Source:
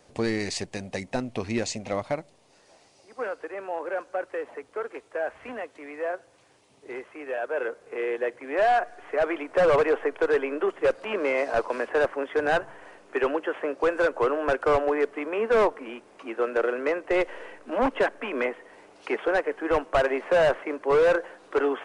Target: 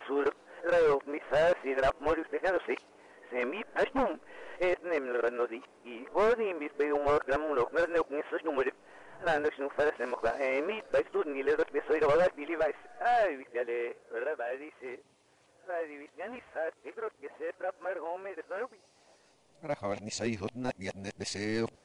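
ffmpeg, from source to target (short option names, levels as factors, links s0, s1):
-af "areverse,volume=0.531"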